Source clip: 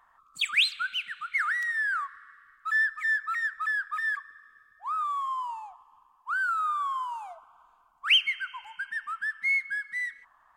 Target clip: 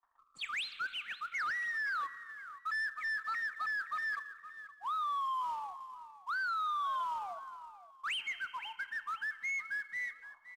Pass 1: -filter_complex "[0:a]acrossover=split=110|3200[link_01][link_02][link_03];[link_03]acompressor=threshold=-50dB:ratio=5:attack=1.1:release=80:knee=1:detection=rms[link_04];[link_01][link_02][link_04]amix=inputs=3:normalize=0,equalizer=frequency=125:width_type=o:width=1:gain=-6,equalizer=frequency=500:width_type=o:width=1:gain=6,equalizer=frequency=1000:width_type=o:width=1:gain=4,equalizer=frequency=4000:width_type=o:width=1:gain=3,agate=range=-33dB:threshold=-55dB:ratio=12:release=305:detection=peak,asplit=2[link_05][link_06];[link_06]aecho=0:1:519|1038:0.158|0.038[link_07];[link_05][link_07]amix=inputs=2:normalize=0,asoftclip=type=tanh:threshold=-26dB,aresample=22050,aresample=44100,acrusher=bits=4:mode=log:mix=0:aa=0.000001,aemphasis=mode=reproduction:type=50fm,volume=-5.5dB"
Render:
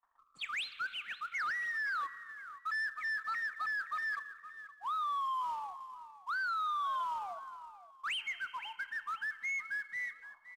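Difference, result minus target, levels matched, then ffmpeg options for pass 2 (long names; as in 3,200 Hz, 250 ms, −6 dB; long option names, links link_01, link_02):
downward compressor: peak gain reduction +7.5 dB
-filter_complex "[0:a]acrossover=split=110|3200[link_01][link_02][link_03];[link_03]acompressor=threshold=-40.5dB:ratio=5:attack=1.1:release=80:knee=1:detection=rms[link_04];[link_01][link_02][link_04]amix=inputs=3:normalize=0,equalizer=frequency=125:width_type=o:width=1:gain=-6,equalizer=frequency=500:width_type=o:width=1:gain=6,equalizer=frequency=1000:width_type=o:width=1:gain=4,equalizer=frequency=4000:width_type=o:width=1:gain=3,agate=range=-33dB:threshold=-55dB:ratio=12:release=305:detection=peak,asplit=2[link_05][link_06];[link_06]aecho=0:1:519|1038:0.158|0.038[link_07];[link_05][link_07]amix=inputs=2:normalize=0,asoftclip=type=tanh:threshold=-26dB,aresample=22050,aresample=44100,acrusher=bits=4:mode=log:mix=0:aa=0.000001,aemphasis=mode=reproduction:type=50fm,volume=-5.5dB"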